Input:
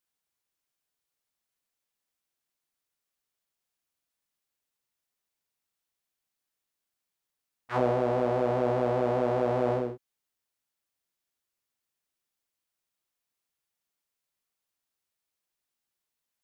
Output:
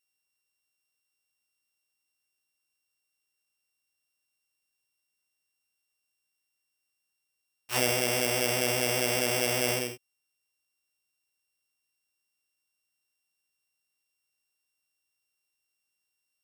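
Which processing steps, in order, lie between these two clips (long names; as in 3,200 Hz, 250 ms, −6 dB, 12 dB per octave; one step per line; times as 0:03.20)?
samples sorted by size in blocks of 16 samples
high-shelf EQ 3,000 Hz +11 dB
level −4 dB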